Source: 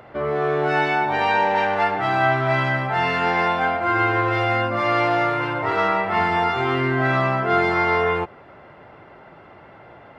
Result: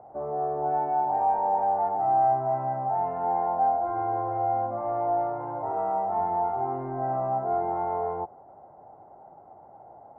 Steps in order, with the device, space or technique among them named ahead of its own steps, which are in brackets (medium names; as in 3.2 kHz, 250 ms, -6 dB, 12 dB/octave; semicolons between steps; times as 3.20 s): overdriven synthesiser ladder filter (saturation -15 dBFS, distortion -17 dB; four-pole ladder low-pass 840 Hz, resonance 75%)